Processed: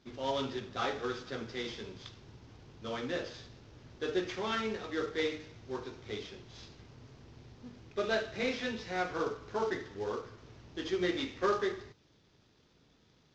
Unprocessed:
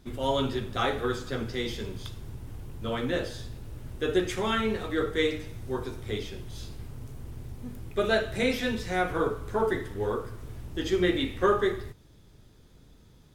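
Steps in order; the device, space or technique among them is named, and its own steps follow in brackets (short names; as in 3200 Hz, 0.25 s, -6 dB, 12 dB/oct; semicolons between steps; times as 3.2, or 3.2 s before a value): early wireless headset (HPF 220 Hz 6 dB/oct; CVSD 32 kbps); gain -5.5 dB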